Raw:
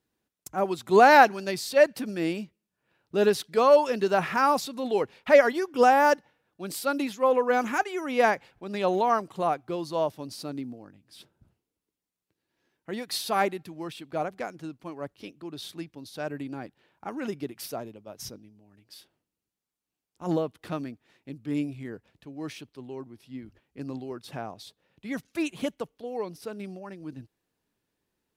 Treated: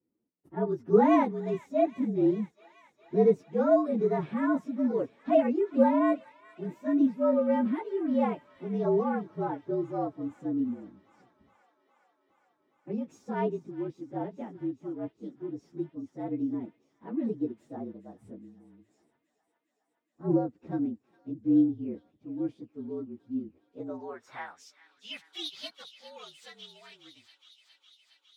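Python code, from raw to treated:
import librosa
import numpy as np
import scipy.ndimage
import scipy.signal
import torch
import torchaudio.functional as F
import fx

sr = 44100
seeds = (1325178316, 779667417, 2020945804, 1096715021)

y = fx.partial_stretch(x, sr, pct=115)
y = fx.filter_sweep_bandpass(y, sr, from_hz=270.0, to_hz=3400.0, start_s=23.51, end_s=24.74, q=1.8)
y = fx.echo_wet_highpass(y, sr, ms=412, feedback_pct=78, hz=2100.0, wet_db=-12.5)
y = y * 10.0 ** (8.0 / 20.0)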